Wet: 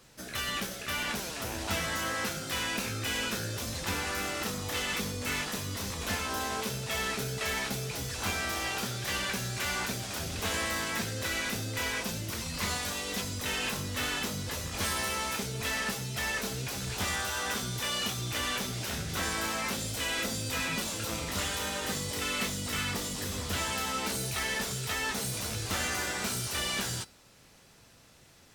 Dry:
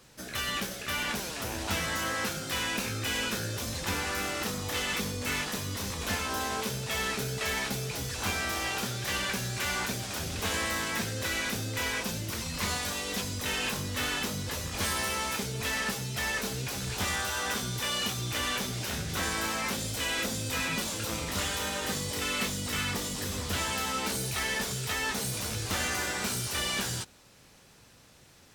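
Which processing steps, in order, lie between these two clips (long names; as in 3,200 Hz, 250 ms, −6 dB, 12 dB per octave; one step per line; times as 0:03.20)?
tuned comb filter 670 Hz, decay 0.34 s, mix 60%
level +6.5 dB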